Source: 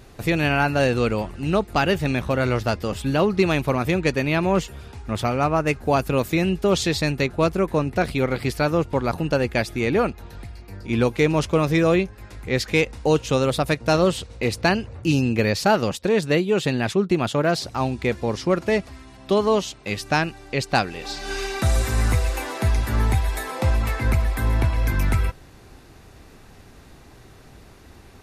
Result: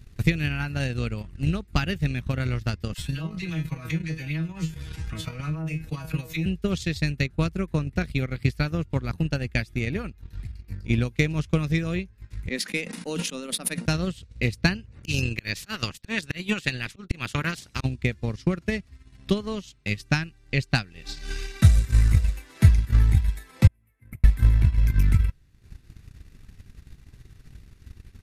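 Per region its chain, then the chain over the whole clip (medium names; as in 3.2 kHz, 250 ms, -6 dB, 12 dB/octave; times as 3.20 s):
2.94–6.46 s: feedback comb 160 Hz, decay 0.21 s, mix 100% + phase dispersion lows, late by 40 ms, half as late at 980 Hz + level flattener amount 70%
12.49–13.86 s: rippled Chebyshev high-pass 170 Hz, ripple 3 dB + peaking EQ 10 kHz +11.5 dB 0.24 oct + decay stretcher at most 48 dB/s
14.91–17.83 s: spectral peaks clipped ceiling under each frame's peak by 17 dB + slow attack 158 ms
23.67–24.24 s: high-pass 230 Hz + gate -26 dBFS, range -11 dB + FFT filter 100 Hz 0 dB, 220 Hz -8 dB, 1.5 kHz -17 dB, 2.1 kHz -12 dB, 4.5 kHz -27 dB, 6.7 kHz -21 dB, 11 kHz -2 dB
whole clip: FFT filter 160 Hz 0 dB, 740 Hz -14 dB, 1.9 kHz -1 dB; transient shaper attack +11 dB, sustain -10 dB; bass shelf 150 Hz +9 dB; trim -7.5 dB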